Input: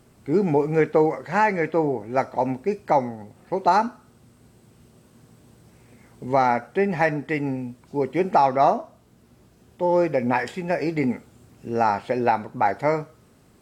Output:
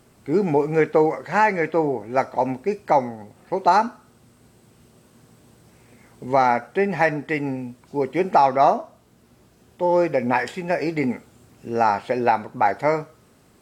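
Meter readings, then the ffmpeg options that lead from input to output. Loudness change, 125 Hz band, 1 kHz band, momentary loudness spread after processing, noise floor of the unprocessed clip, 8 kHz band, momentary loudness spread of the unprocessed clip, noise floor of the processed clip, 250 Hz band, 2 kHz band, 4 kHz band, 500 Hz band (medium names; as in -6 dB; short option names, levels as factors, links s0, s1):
+1.5 dB, -1.0 dB, +2.0 dB, 10 LU, -56 dBFS, no reading, 9 LU, -56 dBFS, 0.0 dB, +2.5 dB, +2.5 dB, +1.5 dB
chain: -af "lowshelf=f=300:g=-4.5,volume=1.33"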